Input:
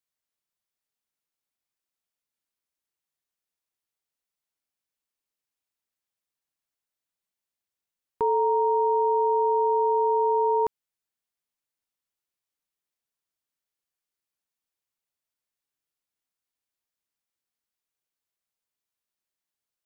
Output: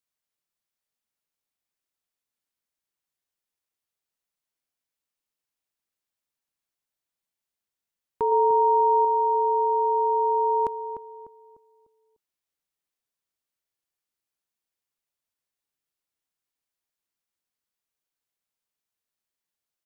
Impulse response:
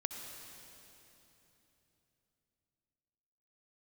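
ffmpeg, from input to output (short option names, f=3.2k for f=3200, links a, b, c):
-filter_complex "[0:a]asettb=1/sr,asplit=3[a][b][c];[a]atrim=end=8.314[d];[b]atrim=start=8.31:end=9.05,asetpts=PTS-STARTPTS,afade=t=in:d=0.004:c=qsin,afade=t=out:st=0.736:d=0.004:c=qsin,aecho=1:1:6.5:0.47,atrim=end_sample=32634[e];[c]atrim=start=9.046[f];[d][e]acrossfade=d=0.004:c1=hsin:c2=qsin[g];[g][f]acrossfade=d=0.004:c1=qsin:c2=hsin,asplit=2[h][i];[i]adelay=299,lowpass=f=1k:p=1,volume=-8.5dB,asplit=2[j][k];[k]adelay=299,lowpass=f=1k:p=1,volume=0.41,asplit=2[l][m];[m]adelay=299,lowpass=f=1k:p=1,volume=0.41,asplit=2[n][o];[o]adelay=299,lowpass=f=1k:p=1,volume=0.41,asplit=2[p][q];[q]adelay=299,lowpass=f=1k:p=1,volume=0.41[r];[h][j][l][n][p][r]amix=inputs=6:normalize=0"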